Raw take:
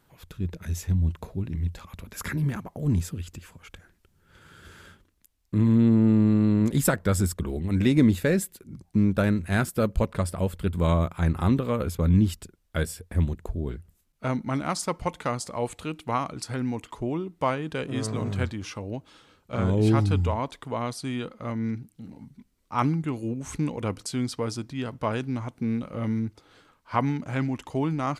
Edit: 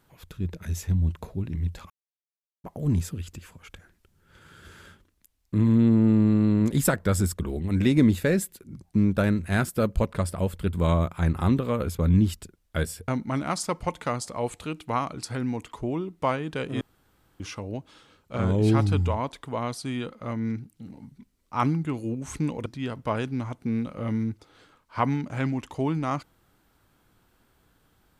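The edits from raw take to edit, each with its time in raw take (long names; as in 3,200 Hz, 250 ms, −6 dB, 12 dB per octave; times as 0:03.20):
0:01.90–0:02.64: silence
0:13.08–0:14.27: remove
0:18.00–0:18.59: fill with room tone
0:23.85–0:24.62: remove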